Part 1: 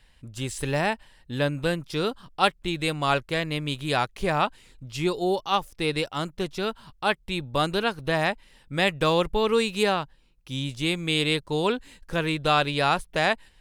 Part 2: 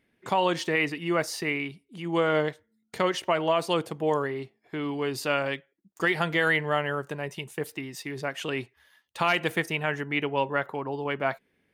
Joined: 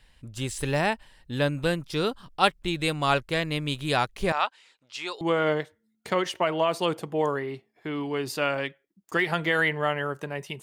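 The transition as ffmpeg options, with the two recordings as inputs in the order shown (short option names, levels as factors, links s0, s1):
-filter_complex "[0:a]asettb=1/sr,asplit=3[s0][s1][s2];[s0]atrim=end=4.324[s3];[s1]atrim=start=4.32:end=5.21,asetpts=PTS-STARTPTS,afade=t=in:d=0.004:c=qsin,afade=t=out:st=0.886:d=0.004:c=qsin,highpass=780,lowpass=6200[s4];[s2]atrim=start=5.206[s5];[s3][s4]acrossfade=d=0.004:c1=hsin:c2=qsin[s6];[s6][s5]acrossfade=d=0.004:c1=qsin:c2=hsin,apad=whole_dur=10.62,atrim=end=10.62,atrim=end=5.212[s7];[1:a]atrim=start=2.088:end=7.5[s8];[s7][s8]acrossfade=d=0.004:c1=hsin:c2=hsin"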